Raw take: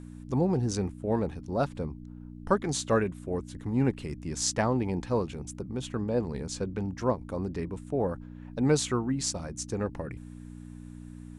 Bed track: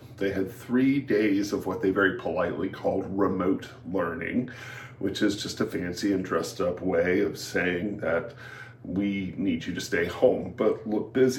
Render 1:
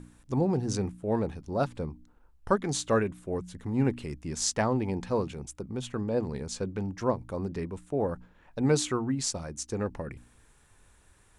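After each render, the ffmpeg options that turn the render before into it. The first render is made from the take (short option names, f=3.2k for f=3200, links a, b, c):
-af "bandreject=f=60:t=h:w=4,bandreject=f=120:t=h:w=4,bandreject=f=180:t=h:w=4,bandreject=f=240:t=h:w=4,bandreject=f=300:t=h:w=4"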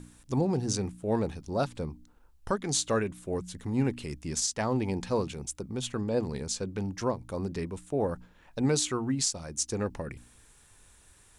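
-filter_complex "[0:a]acrossover=split=2900[a][b];[b]acontrast=82[c];[a][c]amix=inputs=2:normalize=0,alimiter=limit=-16.5dB:level=0:latency=1:release=307"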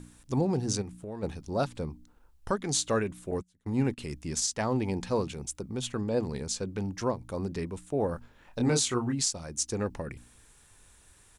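-filter_complex "[0:a]asplit=3[a][b][c];[a]afade=t=out:st=0.81:d=0.02[d];[b]acompressor=threshold=-37dB:ratio=4:attack=3.2:release=140:knee=1:detection=peak,afade=t=in:st=0.81:d=0.02,afade=t=out:st=1.22:d=0.02[e];[c]afade=t=in:st=1.22:d=0.02[f];[d][e][f]amix=inputs=3:normalize=0,asettb=1/sr,asplit=3[g][h][i];[g]atrim=end=3.314[j];[h]atrim=start=3.31:end=3.98,asetpts=PTS-STARTPTS,afade=t=in:d=0.004:c=qsin,afade=t=out:st=0.666:d=0.004:c=qsin,agate=range=-27dB:threshold=-36dB:ratio=16:release=100:detection=peak[k];[i]atrim=start=3.976[l];[j][k]acrossfade=d=0.004:c1=hsin:c2=qsin[m];[m][l]acrossfade=d=0.004:c1=qsin:c2=hsin,asplit=3[n][o][p];[n]afade=t=out:st=8.13:d=0.02[q];[o]asplit=2[r][s];[s]adelay=25,volume=-4dB[t];[r][t]amix=inputs=2:normalize=0,afade=t=in:st=8.13:d=0.02,afade=t=out:st=9.12:d=0.02[u];[p]afade=t=in:st=9.12:d=0.02[v];[q][u][v]amix=inputs=3:normalize=0"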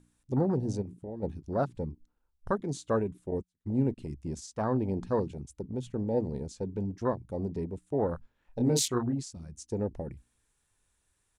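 -af "afwtdn=0.0251"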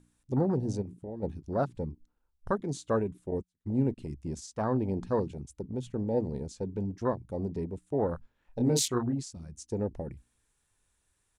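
-af anull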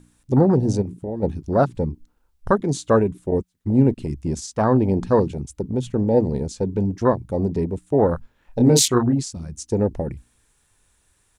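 -af "volume=11.5dB"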